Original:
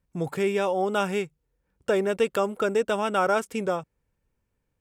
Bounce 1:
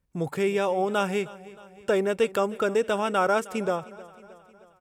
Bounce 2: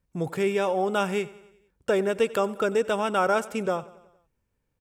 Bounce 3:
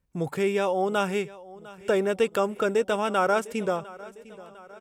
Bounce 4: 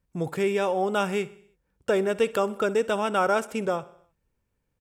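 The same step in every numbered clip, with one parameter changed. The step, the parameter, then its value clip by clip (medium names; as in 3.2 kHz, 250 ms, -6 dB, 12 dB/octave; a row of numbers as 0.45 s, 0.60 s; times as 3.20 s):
feedback delay, time: 312 ms, 92 ms, 703 ms, 63 ms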